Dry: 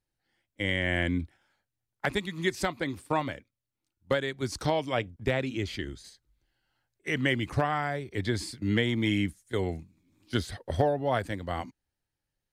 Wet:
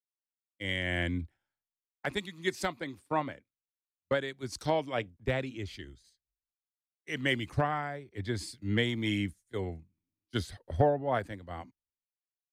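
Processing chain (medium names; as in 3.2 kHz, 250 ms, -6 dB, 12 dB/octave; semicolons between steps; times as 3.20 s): three bands expanded up and down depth 100%; trim -4.5 dB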